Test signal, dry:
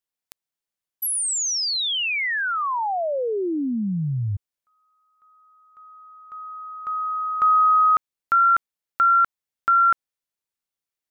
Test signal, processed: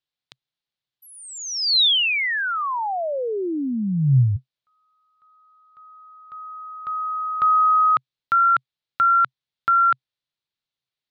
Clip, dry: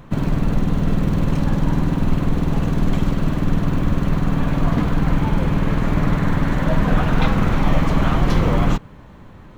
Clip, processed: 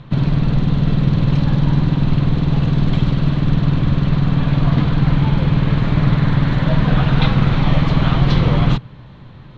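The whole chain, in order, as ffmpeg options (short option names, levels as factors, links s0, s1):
-af "lowpass=f=3900:t=q:w=2.9,equalizer=f=130:t=o:w=0.51:g=12,volume=0.891"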